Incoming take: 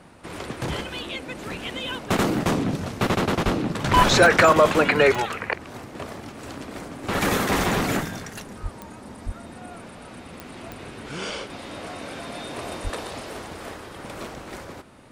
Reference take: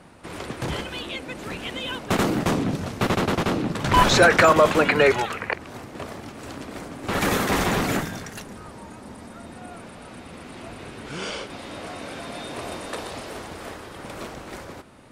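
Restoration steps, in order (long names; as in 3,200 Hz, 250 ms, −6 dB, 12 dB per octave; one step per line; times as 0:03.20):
click removal
high-pass at the plosives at 0:03.44/0:08.62/0:09.25/0:12.83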